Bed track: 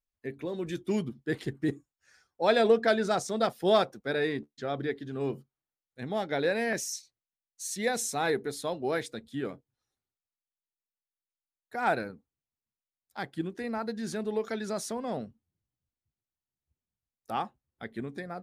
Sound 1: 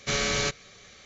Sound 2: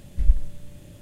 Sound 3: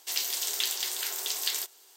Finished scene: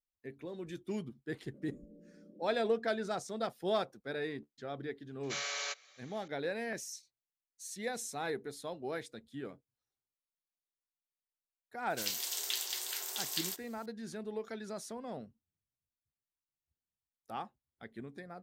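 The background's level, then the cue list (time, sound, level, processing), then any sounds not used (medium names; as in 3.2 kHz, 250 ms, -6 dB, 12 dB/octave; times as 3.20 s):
bed track -9 dB
1.54 s: add 2 -2.5 dB + elliptic band-pass 200–540 Hz
5.23 s: add 1 -10 dB + high-pass 590 Hz 24 dB/octave
11.90 s: add 3 -6.5 dB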